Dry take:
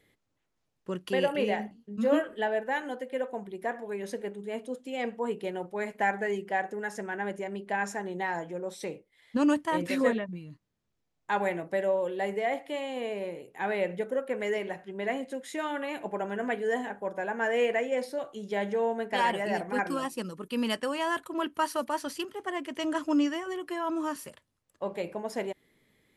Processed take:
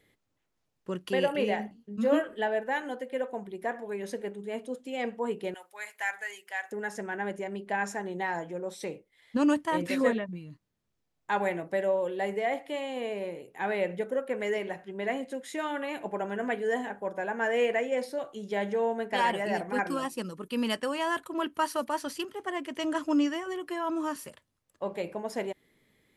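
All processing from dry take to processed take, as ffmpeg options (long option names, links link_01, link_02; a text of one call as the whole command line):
ffmpeg -i in.wav -filter_complex "[0:a]asettb=1/sr,asplit=3[link_01][link_02][link_03];[link_01]atrim=end=5.544[link_04];[link_02]atrim=start=5.54:end=6.72,asetpts=PTS-STARTPTS,afade=type=in:duration=0.004:curve=qsin,afade=type=out:start_time=1.176:duration=0.004:curve=qsin,highpass=1400,highshelf=frequency=7900:gain=11.5[link_05];[link_03]atrim=start=6.716[link_06];[link_04][link_05]acrossfade=duration=0.004:curve1=hsin:curve2=qsin[link_07];[link_07][link_06]acrossfade=duration=0.004:curve1=qsin:curve2=hsin" out.wav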